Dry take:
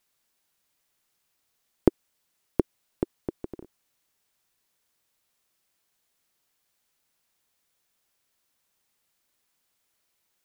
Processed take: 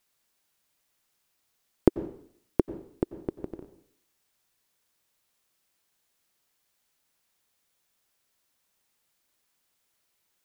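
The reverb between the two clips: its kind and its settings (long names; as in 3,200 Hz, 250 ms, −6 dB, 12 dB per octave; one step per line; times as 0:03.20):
dense smooth reverb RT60 0.63 s, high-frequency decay 1×, pre-delay 80 ms, DRR 12.5 dB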